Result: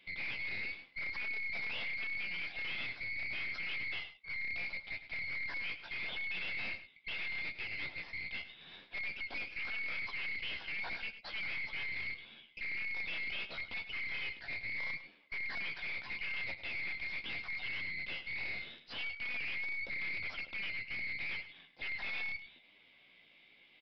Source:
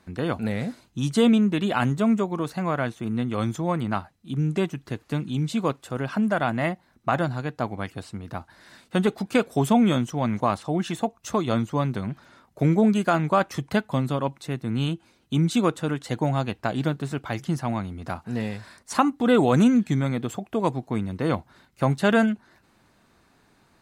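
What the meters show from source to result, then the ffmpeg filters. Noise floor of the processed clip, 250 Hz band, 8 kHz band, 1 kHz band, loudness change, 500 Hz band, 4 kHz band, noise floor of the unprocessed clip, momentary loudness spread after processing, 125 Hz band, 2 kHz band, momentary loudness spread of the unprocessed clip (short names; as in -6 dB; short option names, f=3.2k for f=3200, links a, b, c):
-64 dBFS, -37.0 dB, under -30 dB, -26.5 dB, -13.5 dB, -31.5 dB, -6.0 dB, -62 dBFS, 5 LU, -32.5 dB, -1.5 dB, 12 LU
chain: -filter_complex "[0:a]afftfilt=real='real(if(lt(b,920),b+92*(1-2*mod(floor(b/92),2)),b),0)':imag='imag(if(lt(b,920),b+92*(1-2*mod(floor(b/92),2)),b),0)':win_size=2048:overlap=0.75,highpass=180,acrossover=split=3700[a][b];[b]acompressor=threshold=-43dB:ratio=4:attack=1:release=60[c];[a][c]amix=inputs=2:normalize=0,lowshelf=f=390:g=5,alimiter=limit=-15dB:level=0:latency=1:release=66,flanger=delay=9.4:depth=9.9:regen=27:speed=0.79:shape=triangular,aeval=exprs='(tanh(126*val(0)+0.6)-tanh(0.6))/126':c=same,aecho=1:1:103:0.237,aresample=11025,aresample=44100,volume=3.5dB"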